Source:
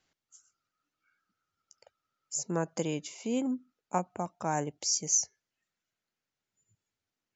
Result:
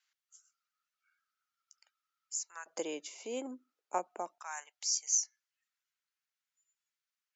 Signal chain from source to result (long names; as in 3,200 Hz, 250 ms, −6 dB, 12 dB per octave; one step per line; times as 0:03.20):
high-pass filter 1,200 Hz 24 dB per octave, from 0:02.66 340 Hz, from 0:04.38 1,100 Hz
level −3 dB